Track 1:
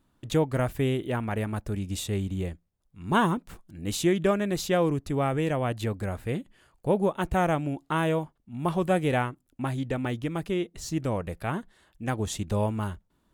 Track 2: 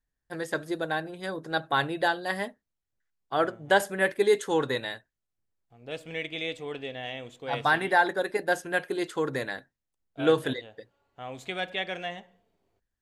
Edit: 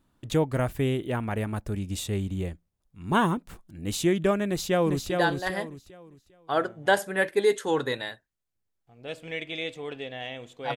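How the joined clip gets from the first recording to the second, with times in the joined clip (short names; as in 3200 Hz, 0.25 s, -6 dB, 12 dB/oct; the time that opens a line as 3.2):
track 1
4.46–5.1 echo throw 0.4 s, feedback 30%, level -4.5 dB
5.1 switch to track 2 from 1.93 s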